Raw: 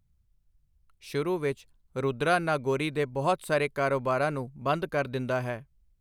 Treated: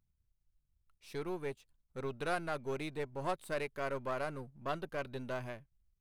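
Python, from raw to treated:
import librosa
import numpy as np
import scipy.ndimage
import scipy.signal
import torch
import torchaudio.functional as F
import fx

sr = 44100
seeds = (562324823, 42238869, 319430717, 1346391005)

y = np.where(x < 0.0, 10.0 ** (-7.0 / 20.0) * x, x)
y = y * 10.0 ** (-8.0 / 20.0)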